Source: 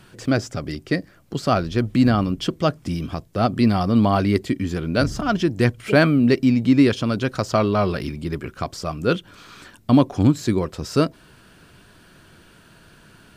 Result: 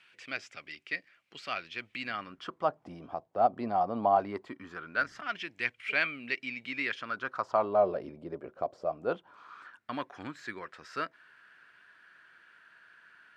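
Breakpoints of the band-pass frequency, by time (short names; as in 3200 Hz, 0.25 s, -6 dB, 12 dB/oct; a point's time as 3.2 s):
band-pass, Q 3.2
2.05 s 2400 Hz
2.76 s 760 Hz
4.14 s 760 Hz
5.42 s 2300 Hz
6.78 s 2300 Hz
7.88 s 600 Hz
8.86 s 600 Hz
9.93 s 1700 Hz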